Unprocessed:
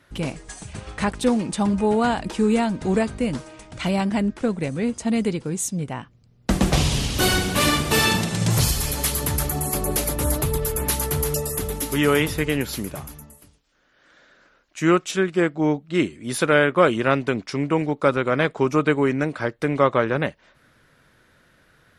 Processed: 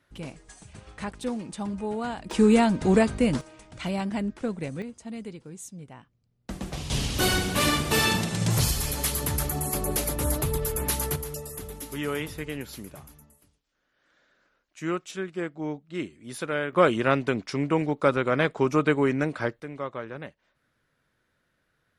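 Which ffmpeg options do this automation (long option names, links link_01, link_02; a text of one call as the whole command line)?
ffmpeg -i in.wav -af "asetnsamples=nb_out_samples=441:pad=0,asendcmd='2.31 volume volume 1dB;3.41 volume volume -7dB;4.82 volume volume -15.5dB;6.9 volume volume -4dB;11.16 volume volume -11.5dB;16.73 volume volume -3dB;19.6 volume volume -15.5dB',volume=-11dB" out.wav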